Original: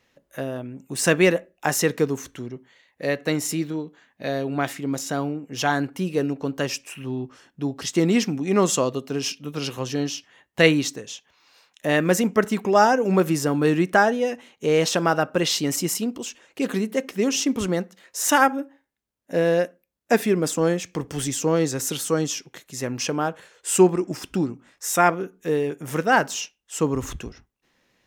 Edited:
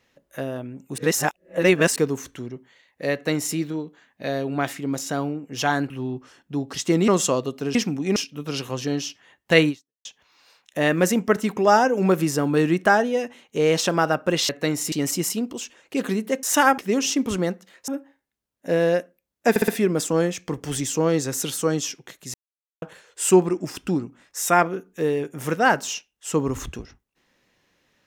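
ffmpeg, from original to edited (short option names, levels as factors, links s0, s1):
-filter_complex "[0:a]asplit=18[s0][s1][s2][s3][s4][s5][s6][s7][s8][s9][s10][s11][s12][s13][s14][s15][s16][s17];[s0]atrim=end=0.982[s18];[s1]atrim=start=0.978:end=1.962,asetpts=PTS-STARTPTS,areverse[s19];[s2]atrim=start=1.958:end=5.902[s20];[s3]atrim=start=6.978:end=8.162[s21];[s4]atrim=start=8.568:end=9.242[s22];[s5]atrim=start=8.158:end=8.572[s23];[s6]atrim=start=9.238:end=11.13,asetpts=PTS-STARTPTS,afade=t=out:st=1.532:d=0.36:c=exp[s24];[s7]atrim=start=11.13:end=15.572,asetpts=PTS-STARTPTS,afade=t=in:d=0.004:c=hsin[s25];[s8]atrim=start=3.128:end=3.562[s26];[s9]atrim=start=15.568:end=17.082[s27];[s10]atrim=start=18.178:end=18.532[s28];[s11]atrim=start=17.078:end=18.182[s29];[s12]atrim=start=18.528:end=20.212[s30];[s13]atrim=start=20.148:end=20.212[s31];[s14]atrim=start=20.148:end=20.212[s32];[s15]atrim=start=20.148:end=22.81,asetpts=PTS-STARTPTS,afade=t=out:st=2.658:d=0.004:c=hsin[s33];[s16]atrim=start=22.81:end=23.29,asetpts=PTS-STARTPTS,volume=0[s34];[s17]atrim=start=23.29,asetpts=PTS-STARTPTS,afade=t=in:d=0.004:c=hsin[s35];[s18][s19]acrossfade=d=0.004:c1=hsin:c2=hsin[s36];[s36][s20]acrossfade=d=0.004:c1=hsin:c2=hsin[s37];[s37][s21]acrossfade=d=0.004:c1=hsin:c2=hsin[s38];[s38][s22]acrossfade=d=0.004:c1=hsin:c2=hsin[s39];[s39][s23]acrossfade=d=0.004:c1=hsin:c2=hsin[s40];[s24][s25]concat=n=2:v=0:a=1[s41];[s40][s41]acrossfade=d=0.004:c1=hsin:c2=hsin[s42];[s42][s26]acrossfade=d=0.004:c1=hsin:c2=hsin[s43];[s43][s27]acrossfade=d=0.004:c1=hsin:c2=hsin[s44];[s44][s28]acrossfade=d=0.004:c1=hsin:c2=hsin[s45];[s45][s29]acrossfade=d=0.004:c1=hsin:c2=hsin[s46];[s46][s30]acrossfade=d=0.004:c1=hsin:c2=hsin[s47];[s47][s31]acrossfade=d=0.004:c1=hsin:c2=hsin[s48];[s48][s32]acrossfade=d=0.004:c1=hsin:c2=hsin[s49];[s33][s34][s35]concat=n=3:v=0:a=1[s50];[s49][s50]acrossfade=d=0.004:c1=hsin:c2=hsin"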